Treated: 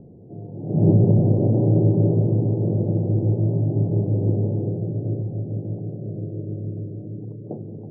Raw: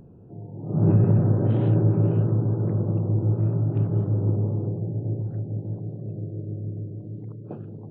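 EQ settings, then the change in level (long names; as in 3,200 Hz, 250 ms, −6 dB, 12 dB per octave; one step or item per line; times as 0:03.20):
Butterworth low-pass 740 Hz 36 dB per octave
low-shelf EQ 87 Hz −10 dB
+5.5 dB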